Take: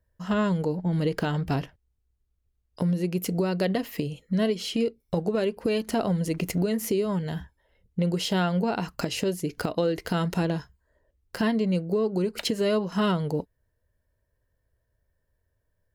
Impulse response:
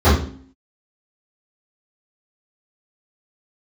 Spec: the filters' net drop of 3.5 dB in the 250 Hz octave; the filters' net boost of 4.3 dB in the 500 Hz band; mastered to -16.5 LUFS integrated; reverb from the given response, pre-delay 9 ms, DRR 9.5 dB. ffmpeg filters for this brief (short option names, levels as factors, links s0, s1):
-filter_complex "[0:a]equalizer=f=250:t=o:g=-7.5,equalizer=f=500:t=o:g=7.5,asplit=2[s0][s1];[1:a]atrim=start_sample=2205,adelay=9[s2];[s1][s2]afir=irnorm=-1:irlink=0,volume=0.0178[s3];[s0][s3]amix=inputs=2:normalize=0,volume=2.66"